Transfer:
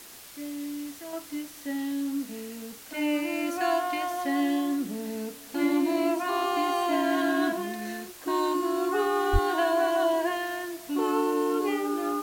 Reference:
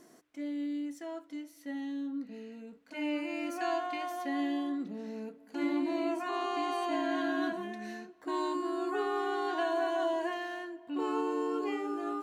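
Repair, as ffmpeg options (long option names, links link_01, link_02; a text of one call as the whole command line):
ffmpeg -i in.wav -filter_complex "[0:a]adeclick=threshold=4,asplit=3[link_01][link_02][link_03];[link_01]afade=type=out:start_time=9.32:duration=0.02[link_04];[link_02]highpass=frequency=140:width=0.5412,highpass=frequency=140:width=1.3066,afade=type=in:start_time=9.32:duration=0.02,afade=type=out:start_time=9.44:duration=0.02[link_05];[link_03]afade=type=in:start_time=9.44:duration=0.02[link_06];[link_04][link_05][link_06]amix=inputs=3:normalize=0,afwtdn=0.005,asetnsamples=nb_out_samples=441:pad=0,asendcmd='1.13 volume volume -6.5dB',volume=0dB" out.wav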